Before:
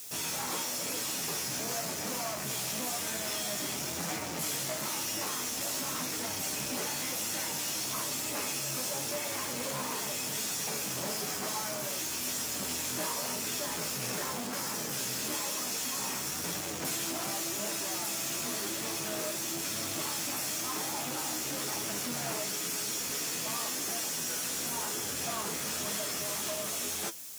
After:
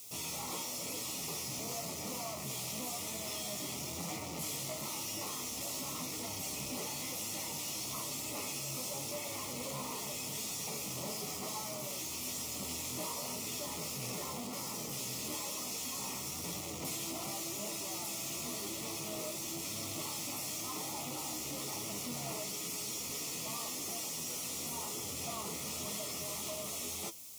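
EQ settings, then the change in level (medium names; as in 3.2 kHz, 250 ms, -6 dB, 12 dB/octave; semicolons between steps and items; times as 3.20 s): Butterworth band-stop 1.6 kHz, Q 2.5; bass shelf 110 Hz +9 dB; -5.5 dB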